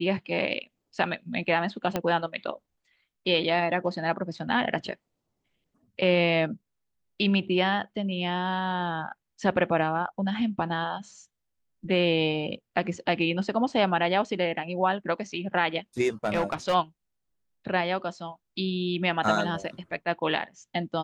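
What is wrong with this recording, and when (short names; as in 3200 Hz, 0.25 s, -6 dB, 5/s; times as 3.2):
1.96 pop -12 dBFS
16.25–16.75 clipped -20.5 dBFS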